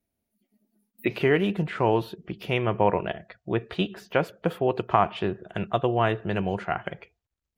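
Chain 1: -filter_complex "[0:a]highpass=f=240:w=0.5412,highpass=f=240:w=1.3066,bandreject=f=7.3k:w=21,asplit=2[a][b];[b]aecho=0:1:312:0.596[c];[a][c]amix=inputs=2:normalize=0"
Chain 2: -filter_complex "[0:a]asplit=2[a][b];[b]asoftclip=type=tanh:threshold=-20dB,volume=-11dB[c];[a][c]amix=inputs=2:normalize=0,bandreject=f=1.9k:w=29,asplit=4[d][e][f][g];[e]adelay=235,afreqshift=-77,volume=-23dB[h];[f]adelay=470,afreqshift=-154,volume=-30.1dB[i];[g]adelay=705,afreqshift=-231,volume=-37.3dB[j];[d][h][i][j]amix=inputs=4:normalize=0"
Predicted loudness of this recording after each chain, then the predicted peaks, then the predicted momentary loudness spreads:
-26.5, -25.0 LUFS; -5.0, -4.5 dBFS; 8, 10 LU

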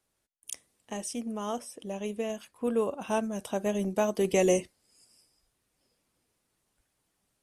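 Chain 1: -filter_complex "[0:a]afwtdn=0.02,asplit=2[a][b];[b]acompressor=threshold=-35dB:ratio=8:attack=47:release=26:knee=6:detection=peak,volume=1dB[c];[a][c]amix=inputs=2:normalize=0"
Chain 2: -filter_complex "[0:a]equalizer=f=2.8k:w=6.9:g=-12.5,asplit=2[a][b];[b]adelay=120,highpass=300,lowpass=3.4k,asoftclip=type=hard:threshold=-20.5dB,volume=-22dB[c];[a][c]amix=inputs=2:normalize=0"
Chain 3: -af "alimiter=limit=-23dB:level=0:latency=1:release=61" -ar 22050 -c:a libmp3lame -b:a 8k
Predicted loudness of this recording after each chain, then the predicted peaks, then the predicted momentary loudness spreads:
-27.0, -31.0, -35.5 LUFS; -9.0, -12.5, -22.0 dBFS; 10, 16, 8 LU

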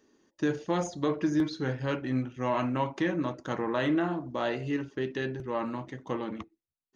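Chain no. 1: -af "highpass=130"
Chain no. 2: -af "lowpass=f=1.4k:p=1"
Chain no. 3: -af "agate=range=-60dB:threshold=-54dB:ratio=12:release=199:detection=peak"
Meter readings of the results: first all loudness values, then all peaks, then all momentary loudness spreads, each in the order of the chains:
-31.5, -32.0, -31.0 LUFS; -16.0, -17.5, -16.5 dBFS; 8, 8, 8 LU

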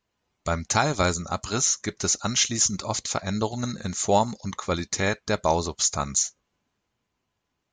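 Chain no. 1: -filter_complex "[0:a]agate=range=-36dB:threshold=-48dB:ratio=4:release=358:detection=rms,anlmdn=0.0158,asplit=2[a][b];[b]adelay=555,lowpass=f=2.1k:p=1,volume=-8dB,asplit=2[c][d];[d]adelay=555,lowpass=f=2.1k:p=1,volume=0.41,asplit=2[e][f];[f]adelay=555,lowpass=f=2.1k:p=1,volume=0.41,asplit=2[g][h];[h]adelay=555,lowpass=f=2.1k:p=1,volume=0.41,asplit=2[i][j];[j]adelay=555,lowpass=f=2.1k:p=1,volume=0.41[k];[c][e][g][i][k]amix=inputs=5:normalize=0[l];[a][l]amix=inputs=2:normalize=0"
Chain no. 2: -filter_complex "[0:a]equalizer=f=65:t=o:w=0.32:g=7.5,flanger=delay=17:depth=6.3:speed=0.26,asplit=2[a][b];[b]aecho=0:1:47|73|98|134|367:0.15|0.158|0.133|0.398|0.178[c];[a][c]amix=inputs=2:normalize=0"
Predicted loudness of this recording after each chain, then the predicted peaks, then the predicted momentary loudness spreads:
-24.5, -27.0 LUFS; -7.0, -9.0 dBFS; 8, 8 LU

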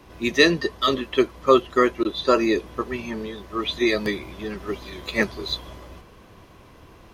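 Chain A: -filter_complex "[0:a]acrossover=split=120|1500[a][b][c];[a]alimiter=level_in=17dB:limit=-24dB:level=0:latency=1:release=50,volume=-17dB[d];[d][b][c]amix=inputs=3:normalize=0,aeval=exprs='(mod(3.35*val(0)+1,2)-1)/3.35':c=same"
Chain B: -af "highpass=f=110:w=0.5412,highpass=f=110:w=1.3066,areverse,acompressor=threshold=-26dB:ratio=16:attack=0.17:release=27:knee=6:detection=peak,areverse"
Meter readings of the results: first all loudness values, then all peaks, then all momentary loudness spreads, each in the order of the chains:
-23.5, -33.5 LUFS; -10.5, -23.5 dBFS; 13, 19 LU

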